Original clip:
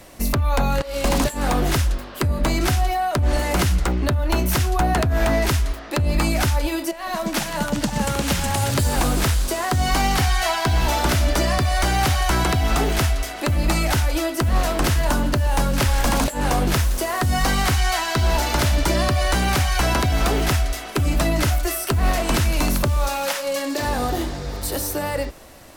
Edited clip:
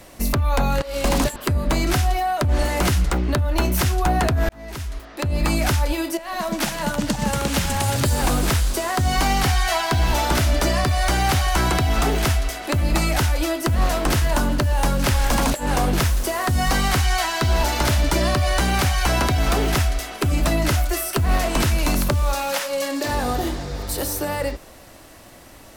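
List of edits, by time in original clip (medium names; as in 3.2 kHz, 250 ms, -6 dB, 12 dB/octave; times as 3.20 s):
1.36–2.10 s: delete
5.23–6.28 s: fade in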